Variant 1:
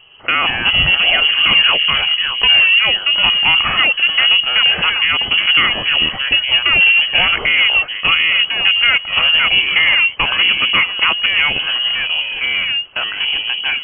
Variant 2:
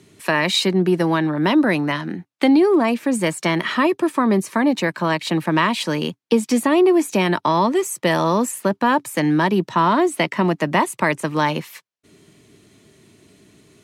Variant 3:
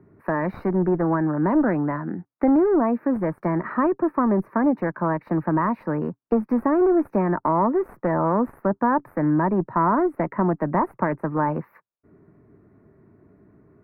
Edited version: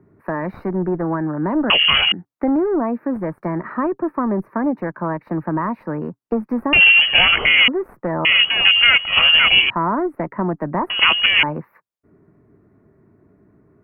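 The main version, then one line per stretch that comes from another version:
3
1.7–2.12 from 1
6.73–7.68 from 1
8.25–9.7 from 1
10.9–11.43 from 1
not used: 2

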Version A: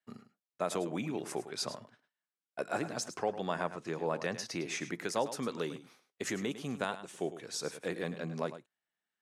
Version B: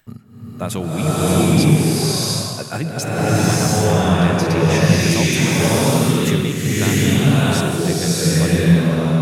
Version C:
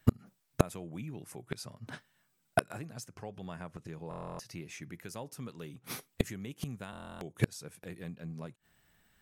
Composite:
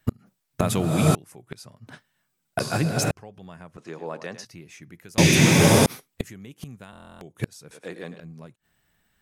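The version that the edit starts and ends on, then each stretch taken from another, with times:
C
0.61–1.15 from B
2.6–3.11 from B
3.78–4.45 from A
5.18–5.86 from B
7.71–8.2 from A

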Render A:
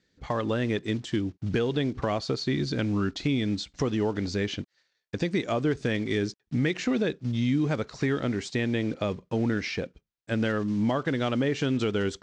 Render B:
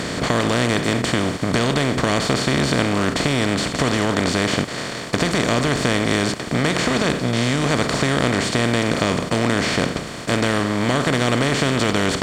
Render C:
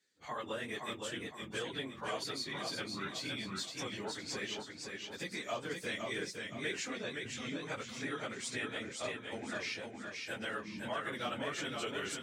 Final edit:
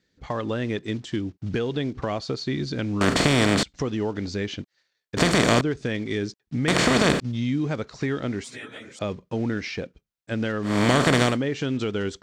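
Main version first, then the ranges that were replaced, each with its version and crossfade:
A
3.01–3.63 from B
5.17–5.61 from B
6.68–7.2 from B
8.44–8.99 from C
10.7–11.3 from B, crossfade 0.16 s

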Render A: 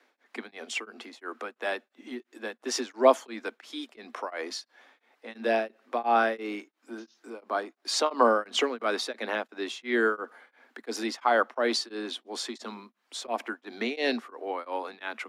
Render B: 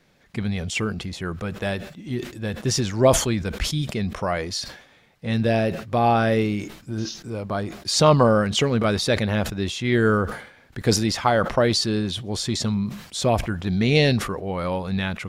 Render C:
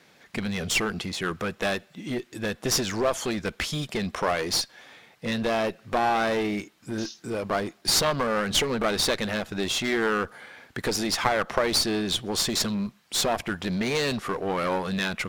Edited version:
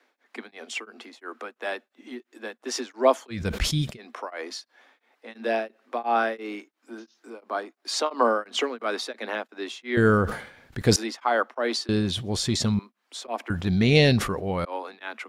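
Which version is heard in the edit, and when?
A
3.38–3.9 from B, crossfade 0.16 s
9.97–10.96 from B
11.89–12.79 from B
13.5–14.65 from B
not used: C

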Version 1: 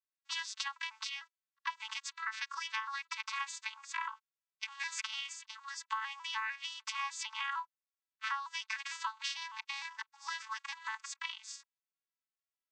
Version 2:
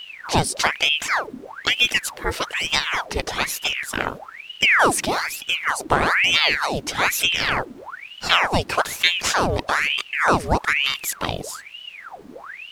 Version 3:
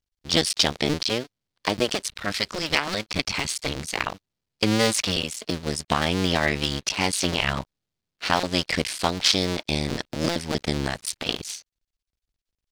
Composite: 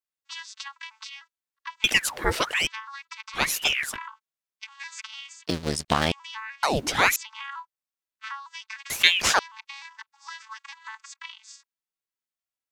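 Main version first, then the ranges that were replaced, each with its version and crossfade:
1
1.84–2.67 from 2
3.38–3.93 from 2, crossfade 0.10 s
5.47–6.12 from 3
6.63–7.16 from 2
8.9–9.39 from 2

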